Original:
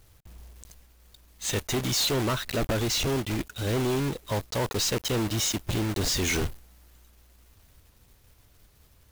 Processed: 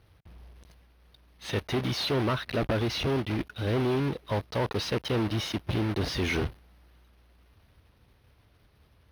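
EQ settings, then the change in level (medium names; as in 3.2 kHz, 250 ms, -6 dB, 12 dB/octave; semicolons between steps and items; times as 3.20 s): boxcar filter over 6 samples; high-pass 54 Hz; 0.0 dB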